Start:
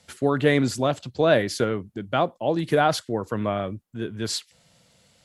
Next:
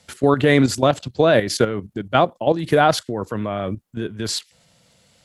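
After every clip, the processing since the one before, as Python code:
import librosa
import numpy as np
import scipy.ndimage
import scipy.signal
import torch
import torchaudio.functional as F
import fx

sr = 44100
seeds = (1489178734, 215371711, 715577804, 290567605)

y = fx.level_steps(x, sr, step_db=11)
y = y * 10.0 ** (8.5 / 20.0)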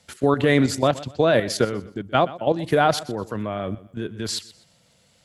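y = fx.echo_feedback(x, sr, ms=124, feedback_pct=30, wet_db=-18)
y = y * 10.0 ** (-3.0 / 20.0)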